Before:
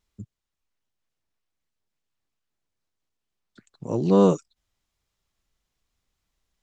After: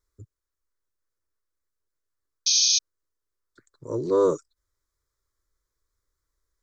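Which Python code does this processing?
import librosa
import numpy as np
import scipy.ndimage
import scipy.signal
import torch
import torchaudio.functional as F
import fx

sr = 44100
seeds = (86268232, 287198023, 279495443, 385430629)

y = fx.spec_paint(x, sr, seeds[0], shape='noise', start_s=2.46, length_s=0.33, low_hz=2400.0, high_hz=6600.0, level_db=-15.0)
y = fx.fixed_phaser(y, sr, hz=750.0, stages=6)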